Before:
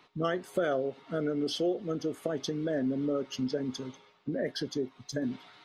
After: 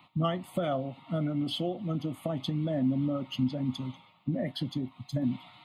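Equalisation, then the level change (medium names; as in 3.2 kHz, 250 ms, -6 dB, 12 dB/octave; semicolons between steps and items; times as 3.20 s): high-pass 87 Hz; bass shelf 240 Hz +10 dB; static phaser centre 1.6 kHz, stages 6; +3.5 dB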